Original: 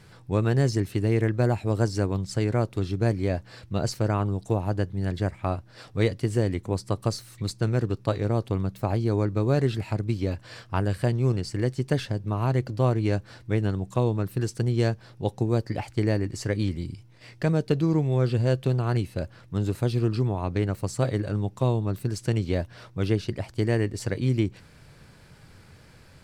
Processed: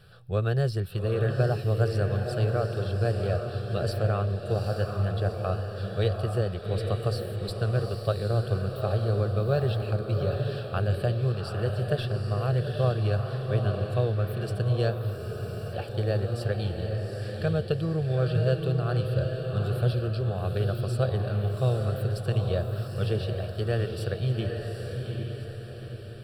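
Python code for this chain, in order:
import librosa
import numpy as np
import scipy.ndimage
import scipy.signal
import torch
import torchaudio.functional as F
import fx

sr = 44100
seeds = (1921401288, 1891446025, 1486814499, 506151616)

y = fx.fixed_phaser(x, sr, hz=1400.0, stages=8)
y = fx.echo_diffused(y, sr, ms=819, feedback_pct=48, wet_db=-4.0)
y = fx.spec_freeze(y, sr, seeds[0], at_s=15.21, hold_s=0.51)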